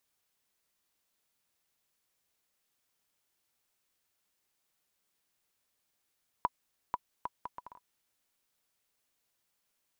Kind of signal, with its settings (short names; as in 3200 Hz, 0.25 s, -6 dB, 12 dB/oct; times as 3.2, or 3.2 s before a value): bouncing ball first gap 0.49 s, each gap 0.64, 983 Hz, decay 36 ms -15.5 dBFS